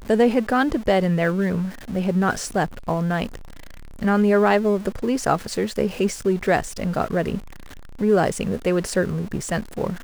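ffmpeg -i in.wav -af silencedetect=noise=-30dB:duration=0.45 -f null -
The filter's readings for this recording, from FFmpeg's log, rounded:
silence_start: 3.36
silence_end: 4.01 | silence_duration: 0.66
silence_start: 7.38
silence_end: 8.00 | silence_duration: 0.62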